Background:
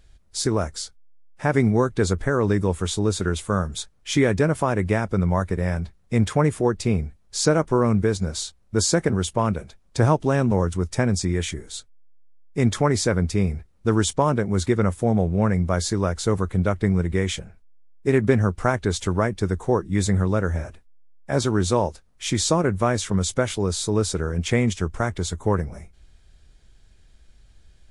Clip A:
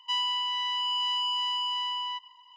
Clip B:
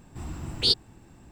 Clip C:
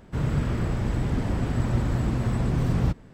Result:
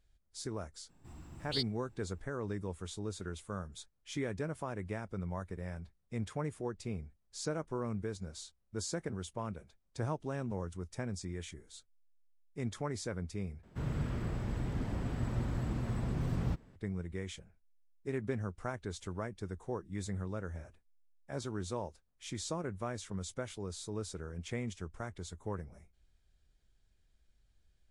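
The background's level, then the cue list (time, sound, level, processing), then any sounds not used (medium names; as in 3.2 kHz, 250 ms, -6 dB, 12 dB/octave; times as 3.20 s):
background -18 dB
0.89 s: add B -14.5 dB
13.63 s: replace with C -10.5 dB
not used: A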